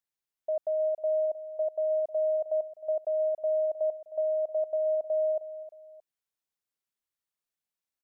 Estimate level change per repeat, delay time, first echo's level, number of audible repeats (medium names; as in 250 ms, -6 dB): -7.0 dB, 311 ms, -15.0 dB, 2